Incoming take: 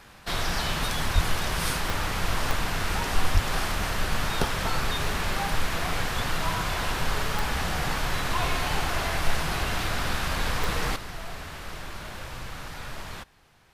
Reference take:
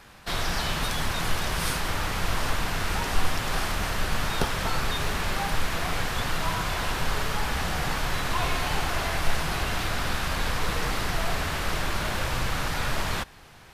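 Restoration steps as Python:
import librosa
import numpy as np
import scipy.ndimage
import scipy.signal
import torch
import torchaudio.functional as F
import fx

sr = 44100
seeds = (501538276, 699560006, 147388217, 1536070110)

y = fx.fix_declick_ar(x, sr, threshold=10.0)
y = fx.fix_deplosive(y, sr, at_s=(1.14, 3.33))
y = fx.gain(y, sr, db=fx.steps((0.0, 0.0), (10.96, 10.0)))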